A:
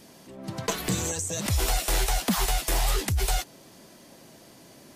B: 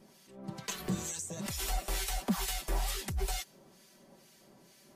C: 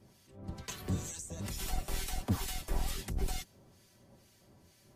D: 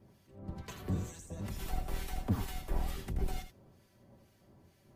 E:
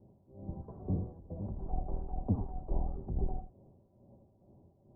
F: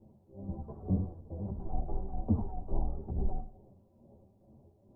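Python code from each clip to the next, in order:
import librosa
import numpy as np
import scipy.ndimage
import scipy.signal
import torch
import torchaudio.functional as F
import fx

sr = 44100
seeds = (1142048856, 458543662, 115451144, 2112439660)

y1 = fx.harmonic_tremolo(x, sr, hz=2.2, depth_pct=70, crossover_hz=1500.0)
y1 = y1 + 0.54 * np.pad(y1, (int(5.2 * sr / 1000.0), 0))[:len(y1)]
y1 = F.gain(torch.from_numpy(y1), -7.0).numpy()
y2 = fx.octave_divider(y1, sr, octaves=1, level_db=4.0)
y2 = F.gain(torch.from_numpy(y2), -4.5).numpy()
y3 = fx.peak_eq(y2, sr, hz=7200.0, db=-10.5, octaves=2.6)
y3 = y3 + 10.0 ** (-9.5 / 20.0) * np.pad(y3, (int(81 * sr / 1000.0), 0))[:len(y3)]
y4 = scipy.signal.sosfilt(scipy.signal.butter(6, 850.0, 'lowpass', fs=sr, output='sos'), y3)
y4 = F.gain(torch.from_numpy(y4), 1.0).numpy()
y5 = y4 + 10.0 ** (-23.0 / 20.0) * np.pad(y4, (int(161 * sr / 1000.0), 0))[:len(y4)]
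y5 = fx.ensemble(y5, sr)
y5 = F.gain(torch.from_numpy(y5), 4.5).numpy()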